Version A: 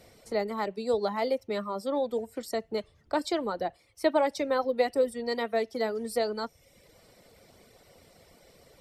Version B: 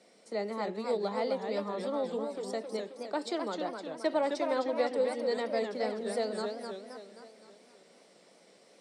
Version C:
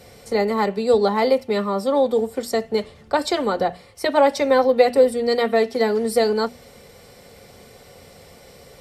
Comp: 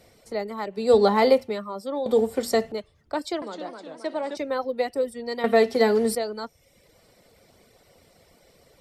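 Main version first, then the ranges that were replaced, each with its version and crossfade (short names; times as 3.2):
A
0.83–1.45 from C, crossfade 0.24 s
2.06–2.72 from C
3.42–4.37 from B
5.44–6.15 from C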